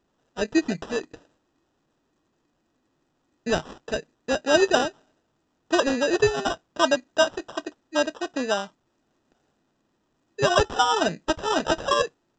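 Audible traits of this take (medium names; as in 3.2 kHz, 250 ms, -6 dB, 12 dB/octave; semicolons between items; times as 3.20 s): aliases and images of a low sample rate 2.2 kHz, jitter 0%; A-law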